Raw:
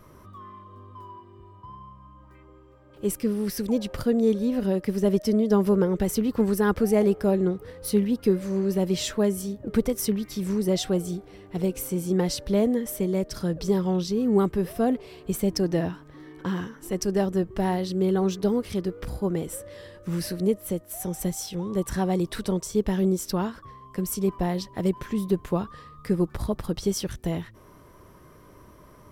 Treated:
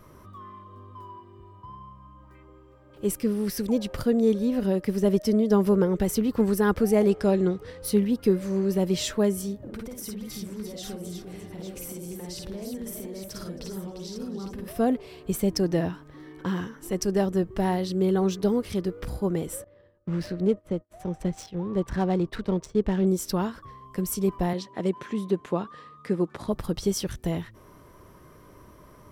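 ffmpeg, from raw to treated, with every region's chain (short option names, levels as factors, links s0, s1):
-filter_complex "[0:a]asettb=1/sr,asplit=3[s0][s1][s2];[s0]atrim=end=7.094[s3];[s1]atrim=start=7.09:end=7.82,asetpts=PTS-STARTPTS,afade=t=in:d=0.004:c=qsin,afade=t=out:st=0.726:d=0.004:c=qsin,lowpass=7100,highshelf=f=2400:g=7.5[s4];[s2]atrim=start=7.816[s5];[s3][s4]acrossfade=d=0.004:c1=hsin:c2=qsin[s6];[s6][s5]acrossfade=d=0.004:c1=qsin:c2=hsin,asettb=1/sr,asplit=3[s7][s8][s9];[s7]atrim=end=9.574[s10];[s8]atrim=start=9.57:end=14.68,asetpts=PTS-STARTPTS,afade=t=in:d=0.004:c=qsin,afade=t=out:st=5.106:d=0.004:c=qsin,acompressor=threshold=0.0158:ratio=6:attack=3.2:release=140:knee=1:detection=peak,aecho=1:1:52|61|269|348|853:0.668|0.398|0.106|0.422|0.376,atrim=end_sample=225351[s11];[s9]atrim=start=14.676[s12];[s10][s11]acrossfade=d=0.004:c1=hsin:c2=qsin[s13];[s13][s12]acrossfade=d=0.004:c1=qsin:c2=hsin,asettb=1/sr,asplit=3[s14][s15][s16];[s14]atrim=end=19.644[s17];[s15]atrim=start=19.64:end=23.07,asetpts=PTS-STARTPTS,afade=t=in:d=0.004:c=qsin,afade=t=out:st=3.426:d=0.004:c=qsin,agate=range=0.0224:threshold=0.0178:ratio=3:release=100:detection=peak,adynamicsmooth=sensitivity=6.5:basefreq=1600[s18];[s16]atrim=start=23.066[s19];[s17][s18]acrossfade=d=0.004:c1=hsin:c2=qsin[s20];[s20][s19]acrossfade=d=0.004:c1=qsin:c2=hsin,asettb=1/sr,asplit=3[s21][s22][s23];[s21]atrim=end=24.534[s24];[s22]atrim=start=24.53:end=26.48,asetpts=PTS-STARTPTS,afade=t=in:d=0.004:c=qsin,afade=t=out:st=1.946:d=0.004:c=qsin,highpass=200,lowpass=7100,equalizer=f=5000:t=o:w=0.34:g=-4.5[s25];[s23]atrim=start=26.476[s26];[s24][s25]acrossfade=d=0.004:c1=hsin:c2=qsin[s27];[s27][s26]acrossfade=d=0.004:c1=qsin:c2=hsin"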